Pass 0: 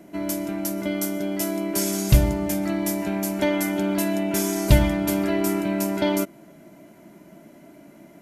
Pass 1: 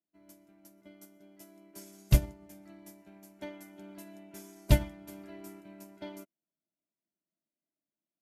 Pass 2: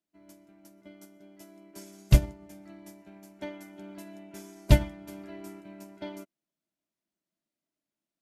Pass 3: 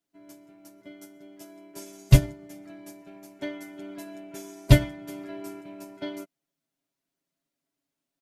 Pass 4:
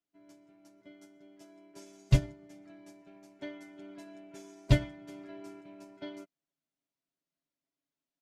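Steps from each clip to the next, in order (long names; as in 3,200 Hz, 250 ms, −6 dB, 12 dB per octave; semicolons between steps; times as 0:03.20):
expander for the loud parts 2.5 to 1, over −40 dBFS; level −5 dB
high-shelf EQ 12,000 Hz −12 dB; level +4 dB
comb filter 7.3 ms, depth 88%; level +2 dB
low-pass filter 7,000 Hz 12 dB per octave; level −8 dB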